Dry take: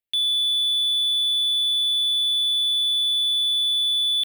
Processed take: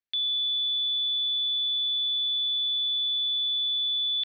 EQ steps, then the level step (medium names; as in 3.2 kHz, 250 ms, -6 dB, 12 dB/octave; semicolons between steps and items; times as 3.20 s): rippled Chebyshev low-pass 6 kHz, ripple 6 dB; 0.0 dB